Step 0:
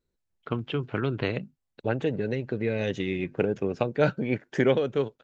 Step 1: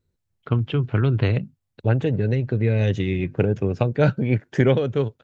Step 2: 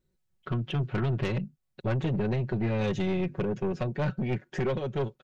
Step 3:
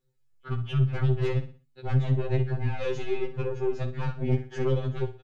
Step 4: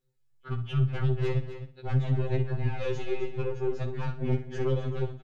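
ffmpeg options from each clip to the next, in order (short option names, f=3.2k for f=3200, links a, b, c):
-af "equalizer=f=100:w=1.1:g=13.5,volume=2dB"
-af "aecho=1:1:5.4:0.81,alimiter=limit=-12dB:level=0:latency=1:release=493,aeval=exprs='(tanh(11.2*val(0)+0.25)-tanh(0.25))/11.2':c=same,volume=-2dB"
-filter_complex "[0:a]flanger=delay=5:depth=9.9:regen=26:speed=1.8:shape=sinusoidal,asplit=2[a][b];[b]aecho=0:1:60|120|180|240:0.251|0.0904|0.0326|0.0117[c];[a][c]amix=inputs=2:normalize=0,afftfilt=real='re*2.45*eq(mod(b,6),0)':imag='im*2.45*eq(mod(b,6),0)':win_size=2048:overlap=0.75,volume=4.5dB"
-af "aecho=1:1:257:0.266,volume=-2dB"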